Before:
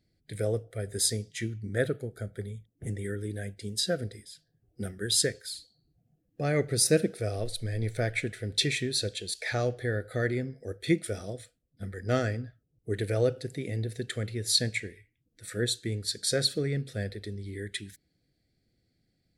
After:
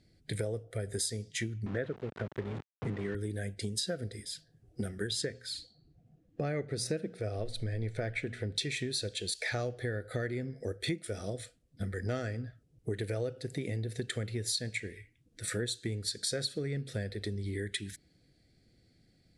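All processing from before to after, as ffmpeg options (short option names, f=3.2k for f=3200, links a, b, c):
-filter_complex "[0:a]asettb=1/sr,asplit=3[a][b][c];[a]atrim=end=1.664[d];[b]atrim=start=1.66:end=3.15,asetpts=PTS-STARTPTS,afade=t=in:d=0.004:c=qsin,afade=t=out:st=1.486:d=0.004:c=qsin,aeval=exprs='val(0)+0.00501*(sin(2*PI*50*n/s)+sin(2*PI*2*50*n/s)/2+sin(2*PI*3*50*n/s)/3+sin(2*PI*4*50*n/s)/4+sin(2*PI*5*50*n/s)/5)':c=same,aeval=exprs='val(0)*gte(abs(val(0)),0.00944)':c=same,highpass=120,lowpass=2.8k[e];[c]atrim=start=3.146[f];[d][e]acrossfade=d=0.004:c1=hsin:c2=qsin[g];[g][f]acrossfade=d=0.004:c1=qsin:c2=hsin,asettb=1/sr,asplit=3[h][i][j];[h]atrim=end=5.074[k];[i]atrim=start=5.07:end=8.56,asetpts=PTS-STARTPTS,afade=t=in:d=0.004:c=qsin,afade=t=out:st=3.486:d=0.004:c=qsin,aemphasis=mode=reproduction:type=50kf,bandreject=f=60:t=h:w=6,bandreject=f=120:t=h:w=6,bandreject=f=180:t=h:w=6,bandreject=f=240:t=h:w=6[l];[j]atrim=start=8.556[m];[k][l]acrossfade=d=0.004:c1=hsin:c2=qsin[n];[n][m]acrossfade=d=0.004:c1=qsin:c2=hsin,lowpass=f=11k:w=0.5412,lowpass=f=11k:w=1.3066,acompressor=threshold=-40dB:ratio=6,volume=7.5dB"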